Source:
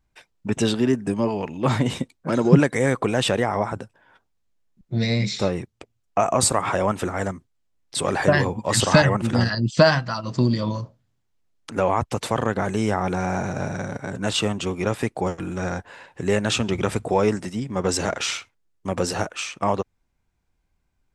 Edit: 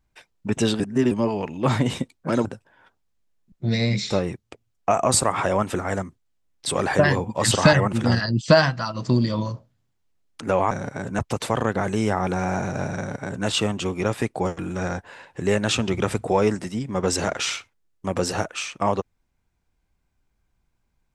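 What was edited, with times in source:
0.80–1.11 s: reverse
2.45–3.74 s: delete
13.79–14.27 s: copy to 12.00 s

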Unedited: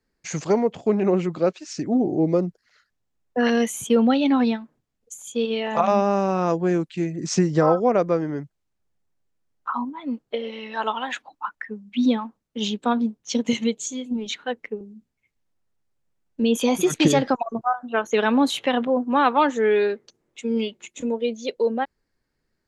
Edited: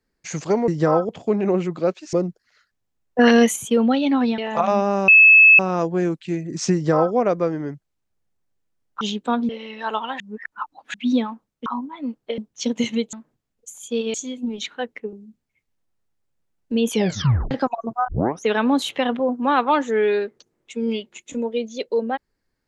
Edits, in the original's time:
1.72–2.32 s: delete
3.38–3.75 s: gain +6.5 dB
4.57–5.58 s: move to 13.82 s
6.28 s: add tone 2.6 kHz -6.5 dBFS 0.51 s
7.43–7.84 s: copy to 0.68 s
9.70–10.42 s: swap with 12.59–13.07 s
11.13–11.87 s: reverse
16.59 s: tape stop 0.60 s
17.76 s: tape start 0.34 s

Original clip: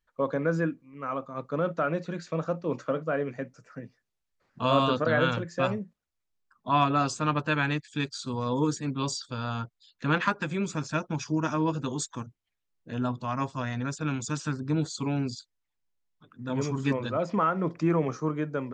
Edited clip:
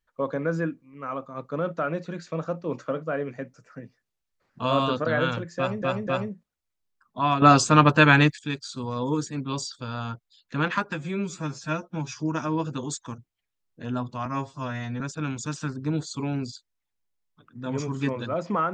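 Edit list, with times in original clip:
5.57–5.82 s: loop, 3 plays
6.92–7.89 s: gain +10.5 dB
10.44–11.27 s: stretch 1.5×
13.34–13.84 s: stretch 1.5×

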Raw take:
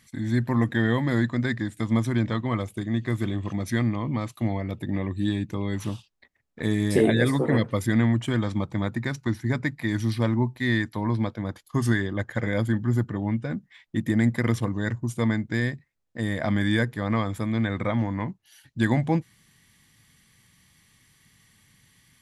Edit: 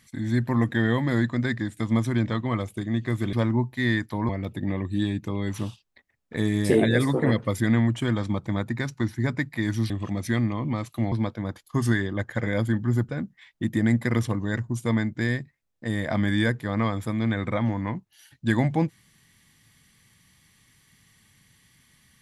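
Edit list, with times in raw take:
3.33–4.55 s: swap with 10.16–11.12 s
13.09–13.42 s: delete

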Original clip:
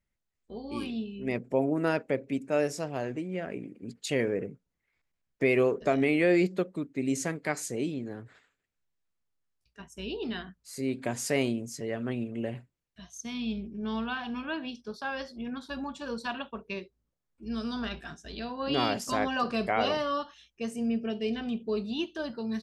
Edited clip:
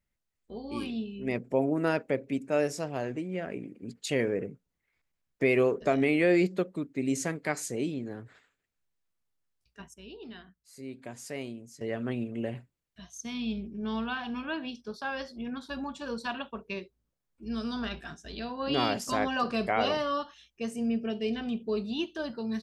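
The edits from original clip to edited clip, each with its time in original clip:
9.94–11.81 s: gain -10.5 dB

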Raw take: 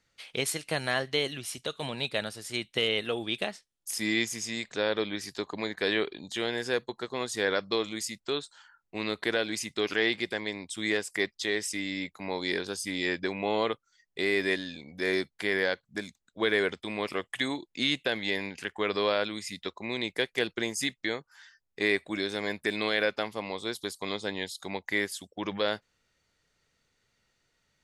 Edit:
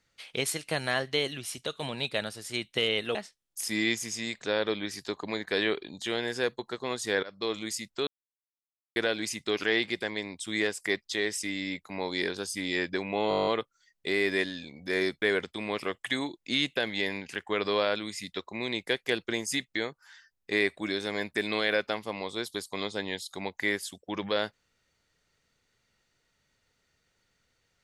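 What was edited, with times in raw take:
3.15–3.45 s: delete
7.53–7.87 s: fade in, from -22 dB
8.37–9.26 s: mute
13.59 s: stutter 0.02 s, 10 plays
15.34–16.51 s: delete

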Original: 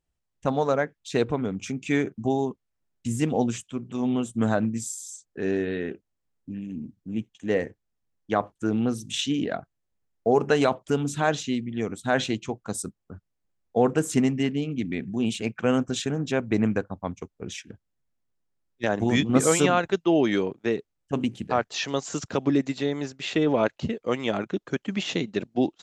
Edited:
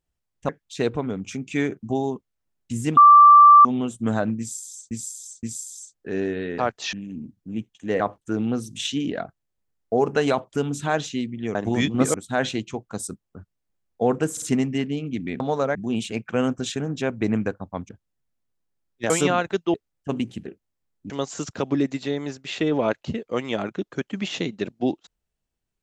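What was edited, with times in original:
0.49–0.84 s: move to 15.05 s
3.32–4.00 s: bleep 1.17 kHz -6.5 dBFS
4.74–5.26 s: loop, 3 plays
5.89–6.53 s: swap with 21.50–21.85 s
7.60–8.34 s: delete
14.07 s: stutter 0.05 s, 3 plays
17.19–17.69 s: delete
18.90–19.49 s: move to 11.89 s
20.13–20.78 s: delete

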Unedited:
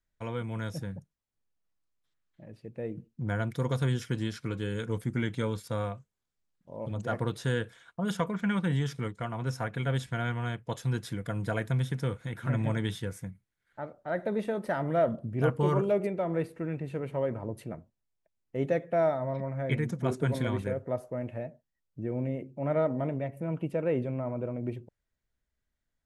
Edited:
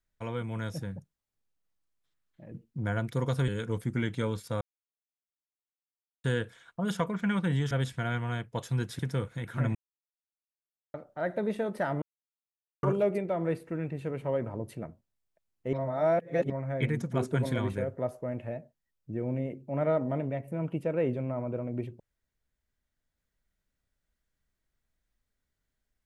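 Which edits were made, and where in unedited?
2.52–2.95 s: delete
3.91–4.68 s: delete
5.81–7.44 s: mute
8.91–9.85 s: delete
11.13–11.88 s: delete
12.64–13.83 s: mute
14.91–15.72 s: mute
18.62–19.39 s: reverse

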